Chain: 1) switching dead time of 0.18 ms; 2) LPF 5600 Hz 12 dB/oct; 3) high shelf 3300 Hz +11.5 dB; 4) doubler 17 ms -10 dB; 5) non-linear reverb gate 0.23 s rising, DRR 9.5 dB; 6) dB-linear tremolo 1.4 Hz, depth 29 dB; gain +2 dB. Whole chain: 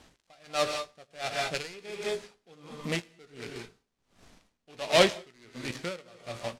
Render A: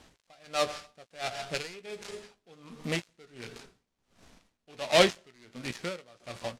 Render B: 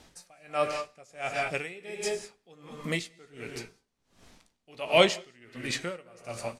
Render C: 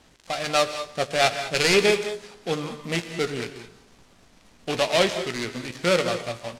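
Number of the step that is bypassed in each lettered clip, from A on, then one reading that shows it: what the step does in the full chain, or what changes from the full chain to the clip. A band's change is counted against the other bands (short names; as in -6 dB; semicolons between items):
5, momentary loudness spread change +2 LU; 1, distortion -7 dB; 6, momentary loudness spread change -7 LU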